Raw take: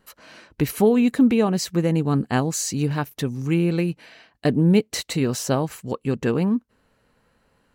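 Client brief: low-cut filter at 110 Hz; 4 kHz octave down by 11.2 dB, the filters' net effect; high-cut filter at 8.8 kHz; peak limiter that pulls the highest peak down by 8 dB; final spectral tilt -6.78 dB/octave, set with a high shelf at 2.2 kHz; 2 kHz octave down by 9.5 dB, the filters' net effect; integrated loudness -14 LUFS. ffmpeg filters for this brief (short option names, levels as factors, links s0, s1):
-af "highpass=110,lowpass=8800,equalizer=f=2000:t=o:g=-6.5,highshelf=f=2200:g=-9,equalizer=f=4000:t=o:g=-3.5,volume=3.76,alimiter=limit=0.631:level=0:latency=1"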